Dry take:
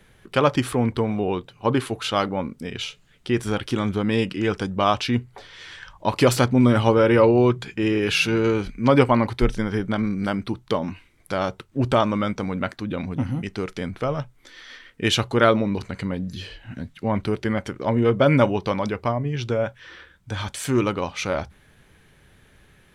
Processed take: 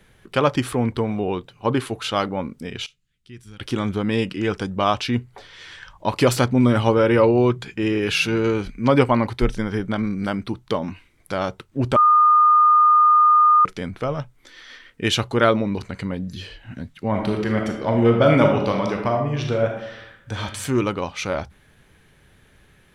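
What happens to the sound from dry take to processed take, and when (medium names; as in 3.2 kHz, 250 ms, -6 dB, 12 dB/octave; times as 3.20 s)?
2.86–3.60 s: amplifier tone stack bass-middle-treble 6-0-2
11.96–13.65 s: bleep 1.22 kHz -10.5 dBFS
17.07–20.42 s: reverb throw, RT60 0.82 s, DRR 1.5 dB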